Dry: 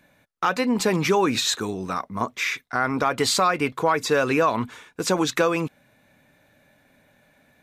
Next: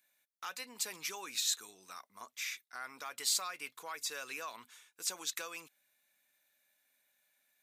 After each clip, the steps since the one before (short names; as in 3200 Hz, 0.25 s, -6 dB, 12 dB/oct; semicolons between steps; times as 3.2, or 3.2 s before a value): differentiator; gain -6 dB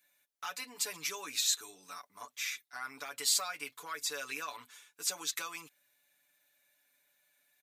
comb 6.9 ms, depth 93%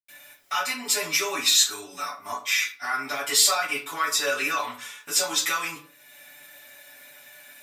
in parallel at -2 dB: upward compressor, threshold -39 dBFS; on the sum: reverb RT60 0.45 s, pre-delay 84 ms; gain -2.5 dB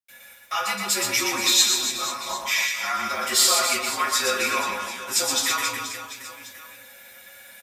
frequency shift -48 Hz; reverse bouncing-ball echo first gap 0.12 s, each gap 1.3×, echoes 5